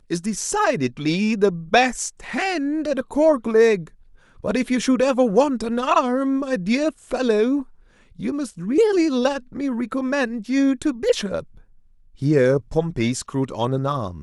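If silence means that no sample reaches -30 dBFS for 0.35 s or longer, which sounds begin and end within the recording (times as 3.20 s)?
4.44–7.62 s
8.19–11.40 s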